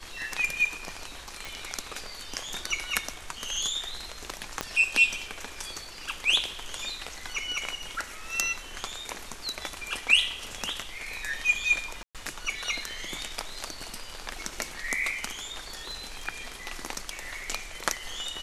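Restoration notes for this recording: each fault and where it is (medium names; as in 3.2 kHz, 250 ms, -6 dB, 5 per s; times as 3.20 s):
1.45 s: pop
4.61 s: pop -12 dBFS
12.03–12.15 s: dropout 117 ms
15.66–16.28 s: clipped -30 dBFS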